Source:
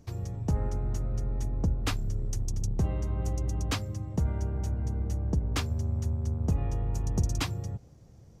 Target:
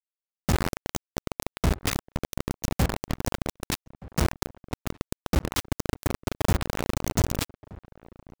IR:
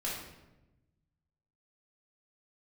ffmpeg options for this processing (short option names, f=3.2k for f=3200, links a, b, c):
-filter_complex "[0:a]acrusher=bits=3:mix=0:aa=0.000001,asplit=2[a][b];[b]adelay=1224,volume=-20dB,highshelf=f=4k:g=-27.6[c];[a][c]amix=inputs=2:normalize=0,volume=1dB"